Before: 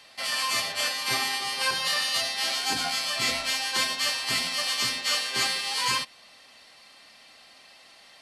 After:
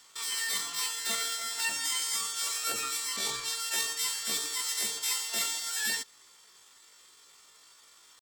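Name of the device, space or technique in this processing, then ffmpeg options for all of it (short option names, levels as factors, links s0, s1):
chipmunk voice: -filter_complex "[0:a]asettb=1/sr,asplit=3[s0][s1][s2];[s0]atrim=end=3.184[s3];[s1]atrim=start=3.18:end=3.61,asetpts=PTS-STARTPTS,afade=t=in:d=0.004:c=qsin,afade=t=out:st=0.426:d=0.004:c=qsin,adynamicequalizer=threshold=0.00631:dfrequency=8400:dqfactor=0.85:tfrequency=8400:tqfactor=0.85:attack=5:release=100:ratio=0.375:range=3:mode=cutabove:tftype=bell[s4];[s2]atrim=start=3.606[s5];[s3][s4]acrossfade=d=0.004:c1=hsin:c2=qsin[s6];[s6][s5]acrossfade=d=0.004:c1=qsin:c2=hsin,asetrate=76340,aresample=44100,atempo=0.577676,volume=0.596"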